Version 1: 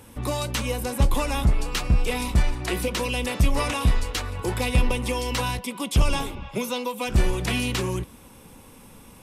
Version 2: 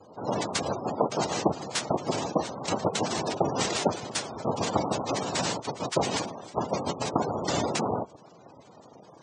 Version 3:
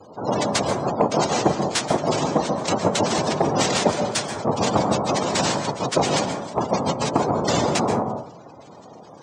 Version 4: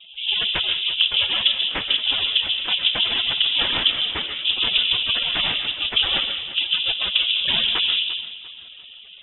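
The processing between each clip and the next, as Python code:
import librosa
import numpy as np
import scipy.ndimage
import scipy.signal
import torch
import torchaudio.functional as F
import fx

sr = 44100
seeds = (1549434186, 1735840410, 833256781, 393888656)

y1 = fx.noise_vocoder(x, sr, seeds[0], bands=2)
y1 = fx.cheby_harmonics(y1, sr, harmonics=(7,), levels_db=(-37,), full_scale_db=-9.0)
y1 = fx.spec_gate(y1, sr, threshold_db=-15, keep='strong')
y2 = 10.0 ** (-13.5 / 20.0) * np.tanh(y1 / 10.0 ** (-13.5 / 20.0))
y2 = fx.rev_plate(y2, sr, seeds[1], rt60_s=0.53, hf_ratio=0.35, predelay_ms=120, drr_db=6.0)
y2 = F.gain(torch.from_numpy(y2), 6.5).numpy()
y3 = fx.echo_feedback(y2, sr, ms=346, feedback_pct=38, wet_db=-16)
y3 = fx.freq_invert(y3, sr, carrier_hz=3700)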